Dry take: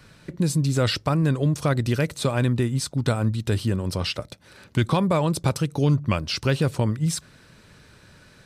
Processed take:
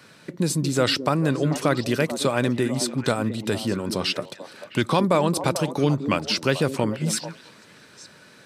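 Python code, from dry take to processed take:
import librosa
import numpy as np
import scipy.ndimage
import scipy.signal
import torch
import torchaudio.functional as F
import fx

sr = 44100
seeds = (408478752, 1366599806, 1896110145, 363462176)

p1 = scipy.signal.sosfilt(scipy.signal.butter(2, 210.0, 'highpass', fs=sr, output='sos'), x)
p2 = p1 + fx.echo_stepped(p1, sr, ms=220, hz=270.0, octaves=1.4, feedback_pct=70, wet_db=-6, dry=0)
y = F.gain(torch.from_numpy(p2), 3.0).numpy()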